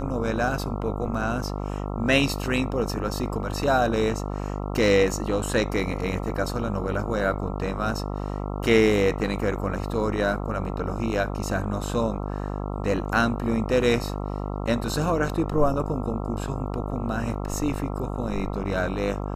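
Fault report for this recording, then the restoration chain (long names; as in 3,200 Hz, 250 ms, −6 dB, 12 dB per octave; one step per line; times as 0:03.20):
mains buzz 50 Hz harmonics 27 −30 dBFS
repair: hum removal 50 Hz, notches 27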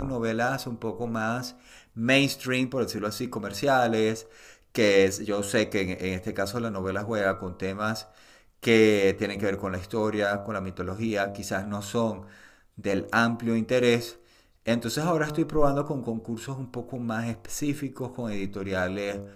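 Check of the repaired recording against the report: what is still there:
none of them is left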